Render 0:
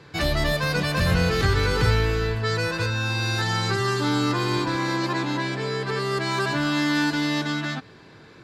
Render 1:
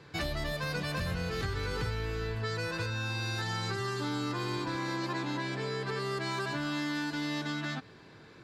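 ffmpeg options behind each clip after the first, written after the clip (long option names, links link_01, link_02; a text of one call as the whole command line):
ffmpeg -i in.wav -af "acompressor=threshold=-25dB:ratio=6,volume=-5.5dB" out.wav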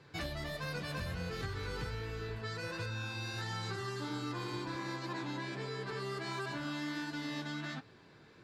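ffmpeg -i in.wav -af "flanger=delay=7.5:depth=7.4:regen=-55:speed=1.4:shape=sinusoidal,volume=-1.5dB" out.wav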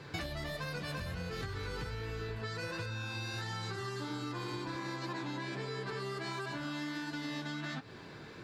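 ffmpeg -i in.wav -af "acompressor=threshold=-46dB:ratio=12,volume=10dB" out.wav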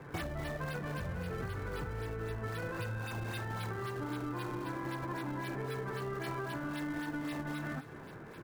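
ffmpeg -i in.wav -filter_complex "[0:a]acrossover=split=150|1400|1900[link_01][link_02][link_03][link_04];[link_04]acrusher=samples=28:mix=1:aa=0.000001:lfo=1:lforange=44.8:lforate=3.8[link_05];[link_01][link_02][link_03][link_05]amix=inputs=4:normalize=0,aecho=1:1:251:0.211,volume=1dB" out.wav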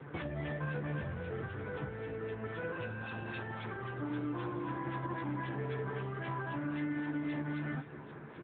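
ffmpeg -i in.wav -filter_complex "[0:a]asplit=2[link_01][link_02];[link_02]adelay=14,volume=-7dB[link_03];[link_01][link_03]amix=inputs=2:normalize=0" -ar 8000 -c:a libopencore_amrnb -b:a 10200 out.amr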